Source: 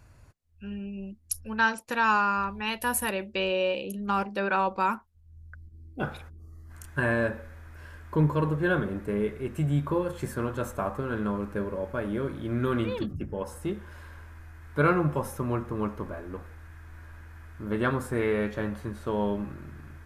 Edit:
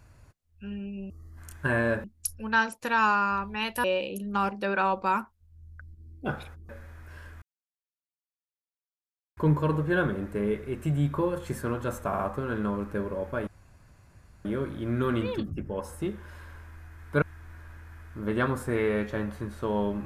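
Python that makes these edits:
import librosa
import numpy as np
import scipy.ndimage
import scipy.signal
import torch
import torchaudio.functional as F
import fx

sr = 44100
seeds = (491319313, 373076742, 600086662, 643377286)

y = fx.edit(x, sr, fx.cut(start_s=2.9, length_s=0.68),
    fx.move(start_s=6.43, length_s=0.94, to_s=1.1),
    fx.insert_silence(at_s=8.1, length_s=1.95),
    fx.stutter(start_s=10.8, slice_s=0.06, count=3),
    fx.insert_room_tone(at_s=12.08, length_s=0.98),
    fx.cut(start_s=14.85, length_s=1.81), tone=tone)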